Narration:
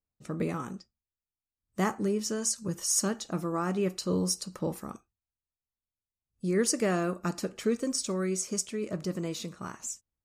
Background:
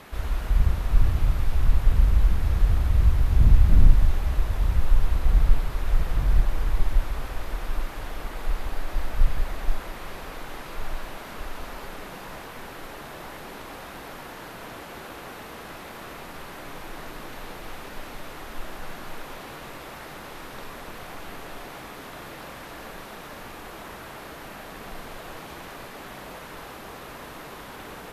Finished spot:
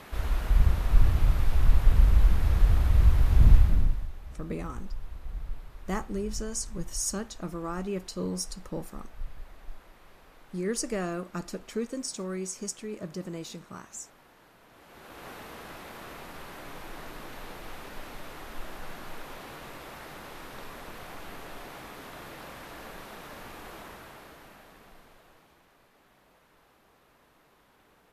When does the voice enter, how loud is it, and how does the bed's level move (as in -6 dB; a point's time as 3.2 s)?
4.10 s, -4.0 dB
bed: 3.55 s -1 dB
4.11 s -18 dB
14.68 s -18 dB
15.27 s -4 dB
23.75 s -4 dB
25.66 s -22.5 dB